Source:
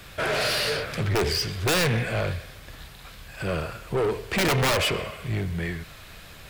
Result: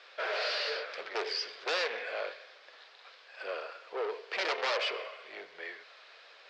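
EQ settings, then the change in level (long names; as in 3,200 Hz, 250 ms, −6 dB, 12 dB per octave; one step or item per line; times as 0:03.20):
elliptic band-pass filter 470–5,000 Hz, stop band 50 dB
−7.0 dB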